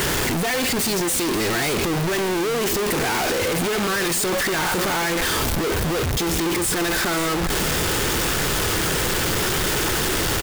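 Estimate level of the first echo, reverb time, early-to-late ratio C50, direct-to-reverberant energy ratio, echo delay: -13.5 dB, no reverb, no reverb, no reverb, 539 ms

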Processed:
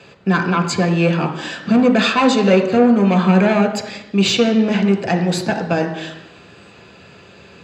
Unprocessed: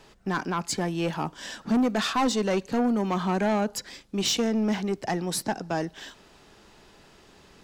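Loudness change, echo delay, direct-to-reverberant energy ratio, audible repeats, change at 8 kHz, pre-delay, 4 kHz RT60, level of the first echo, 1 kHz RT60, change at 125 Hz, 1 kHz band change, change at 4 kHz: +11.0 dB, no echo, 4.5 dB, no echo, +3.0 dB, 3 ms, 1.0 s, no echo, 0.95 s, +14.0 dB, +8.5 dB, +8.5 dB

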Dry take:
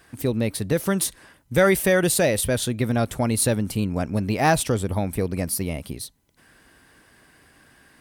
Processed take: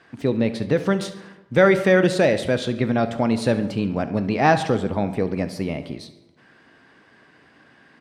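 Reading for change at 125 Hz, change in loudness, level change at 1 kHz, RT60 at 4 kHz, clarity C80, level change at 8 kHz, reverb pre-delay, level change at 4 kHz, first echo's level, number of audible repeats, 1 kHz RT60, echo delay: -1.0 dB, +1.5 dB, +3.0 dB, 0.60 s, 14.0 dB, -15.0 dB, 11 ms, -1.5 dB, -18.0 dB, 2, 1.0 s, 70 ms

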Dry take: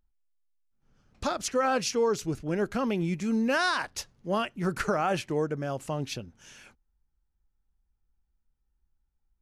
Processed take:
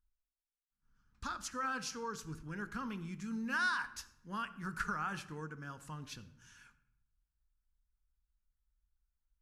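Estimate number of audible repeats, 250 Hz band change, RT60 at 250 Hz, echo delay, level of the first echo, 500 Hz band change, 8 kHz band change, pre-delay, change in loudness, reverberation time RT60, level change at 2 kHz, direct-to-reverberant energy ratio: no echo, -13.0 dB, 1.1 s, no echo, no echo, -21.5 dB, -10.5 dB, 4 ms, -11.0 dB, 0.85 s, -5.0 dB, 9.5 dB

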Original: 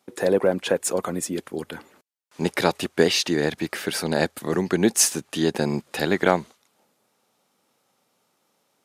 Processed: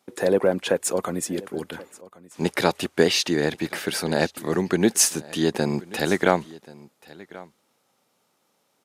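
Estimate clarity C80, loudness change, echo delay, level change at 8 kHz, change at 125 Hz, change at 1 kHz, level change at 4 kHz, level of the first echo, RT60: no reverb, 0.0 dB, 1082 ms, 0.0 dB, 0.0 dB, 0.0 dB, 0.0 dB, -21.0 dB, no reverb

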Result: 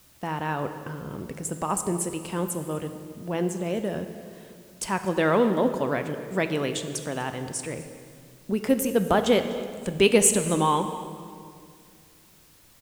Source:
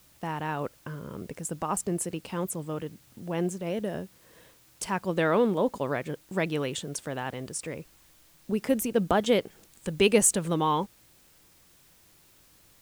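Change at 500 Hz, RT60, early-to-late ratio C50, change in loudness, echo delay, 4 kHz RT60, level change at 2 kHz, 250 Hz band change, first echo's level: +3.0 dB, 2.3 s, 9.0 dB, +3.0 dB, 247 ms, 1.7 s, +3.0 dB, +3.0 dB, -20.5 dB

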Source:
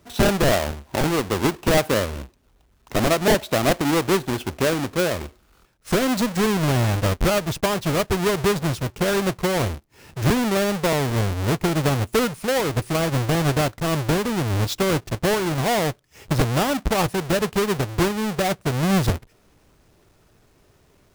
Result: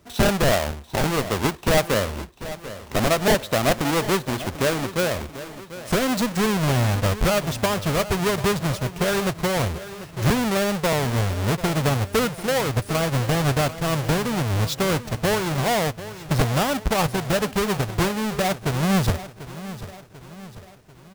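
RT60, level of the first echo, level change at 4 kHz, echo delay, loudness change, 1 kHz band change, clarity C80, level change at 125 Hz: no reverb, -14.5 dB, 0.0 dB, 742 ms, -0.5 dB, 0.0 dB, no reverb, 0.0 dB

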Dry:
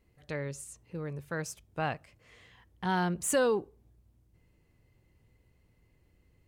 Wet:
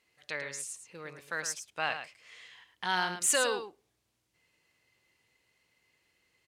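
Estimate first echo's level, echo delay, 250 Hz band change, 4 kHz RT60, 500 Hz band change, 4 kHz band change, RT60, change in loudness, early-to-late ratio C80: -9.0 dB, 108 ms, -11.5 dB, no reverb, -5.0 dB, +8.5 dB, no reverb, +1.0 dB, no reverb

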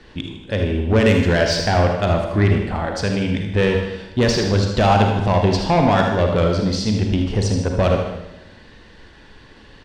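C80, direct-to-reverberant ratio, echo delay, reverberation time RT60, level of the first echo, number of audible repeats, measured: 6.5 dB, 2.0 dB, 77 ms, 0.95 s, -9.0 dB, 2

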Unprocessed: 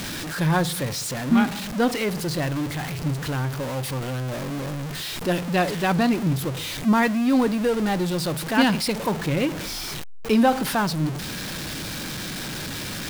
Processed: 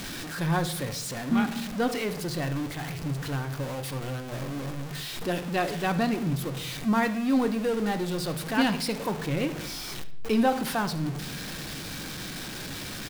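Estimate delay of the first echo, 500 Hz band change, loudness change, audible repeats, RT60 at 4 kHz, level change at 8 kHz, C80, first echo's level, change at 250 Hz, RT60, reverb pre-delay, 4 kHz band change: 73 ms, -4.5 dB, -5.0 dB, 1, 0.60 s, -5.5 dB, 17.0 dB, -17.5 dB, -5.0 dB, 0.80 s, 3 ms, -5.0 dB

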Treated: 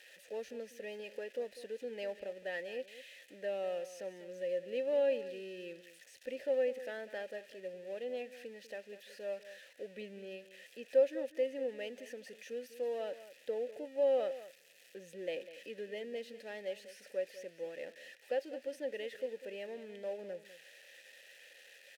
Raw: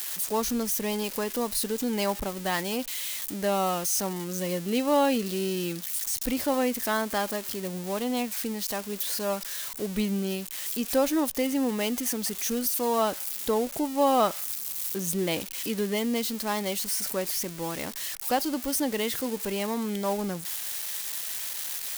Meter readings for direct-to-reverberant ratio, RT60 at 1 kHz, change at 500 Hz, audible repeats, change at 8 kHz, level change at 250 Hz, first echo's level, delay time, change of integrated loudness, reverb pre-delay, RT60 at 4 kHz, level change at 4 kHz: no reverb, no reverb, -6.0 dB, 1, under -25 dB, -22.0 dB, -14.5 dB, 197 ms, -11.5 dB, no reverb, no reverb, -19.0 dB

